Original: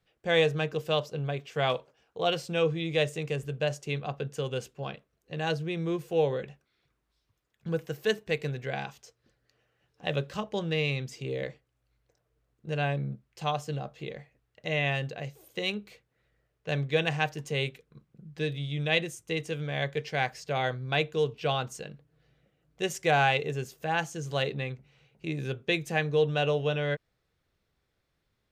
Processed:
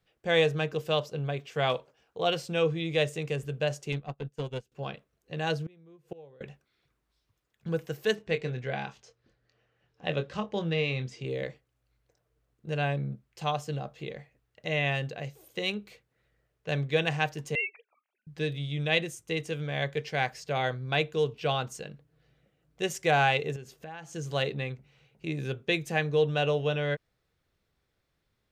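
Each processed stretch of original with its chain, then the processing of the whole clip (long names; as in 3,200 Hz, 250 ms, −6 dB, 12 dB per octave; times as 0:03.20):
0:03.92–0:04.72: low-shelf EQ 210 Hz +6 dB + tube saturation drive 24 dB, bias 0.4 + expander for the loud parts 2.5 to 1, over −45 dBFS
0:05.66–0:06.41: high-shelf EQ 2,100 Hz −8 dB + gate with flip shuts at −28 dBFS, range −24 dB
0:08.15–0:11.25: high-frequency loss of the air 78 metres + double-tracking delay 24 ms −9 dB
0:17.55–0:18.27: three sine waves on the formant tracks + Butterworth high-pass 570 Hz + high-shelf EQ 3,000 Hz +9.5 dB
0:23.56–0:24.13: high-shelf EQ 7,400 Hz −8.5 dB + downward compressor 5 to 1, threshold −40 dBFS
whole clip: no processing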